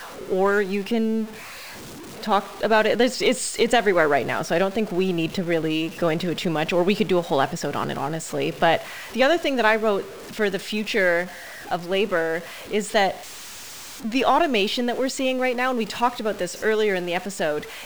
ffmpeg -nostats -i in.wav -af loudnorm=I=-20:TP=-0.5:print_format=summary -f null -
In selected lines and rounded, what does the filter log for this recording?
Input Integrated:    -22.9 LUFS
Input True Peak:      -4.8 dBTP
Input LRA:             2.5 LU
Input Threshold:     -33.2 LUFS